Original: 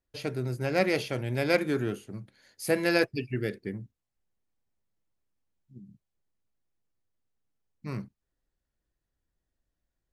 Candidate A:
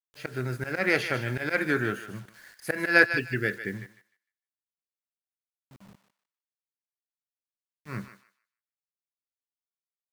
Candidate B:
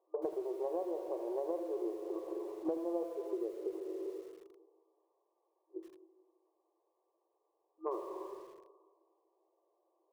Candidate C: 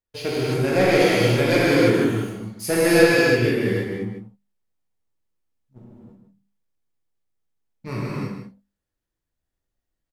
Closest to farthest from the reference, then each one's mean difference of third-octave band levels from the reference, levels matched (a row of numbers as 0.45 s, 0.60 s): A, C, B; 6.0 dB, 9.0 dB, 14.5 dB